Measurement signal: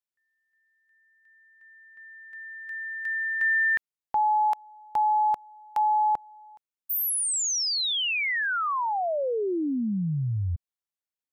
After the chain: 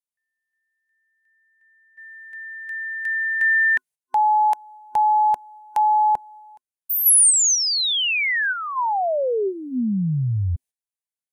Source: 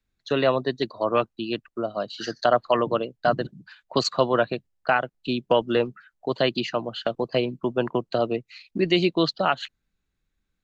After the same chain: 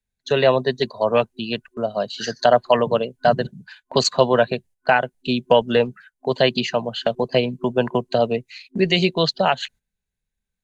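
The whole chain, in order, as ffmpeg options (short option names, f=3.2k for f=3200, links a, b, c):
-af "agate=range=-11dB:threshold=-50dB:ratio=16:release=234:detection=peak,superequalizer=6b=0.282:10b=0.447:15b=1.58:16b=2.51,volume=5.5dB"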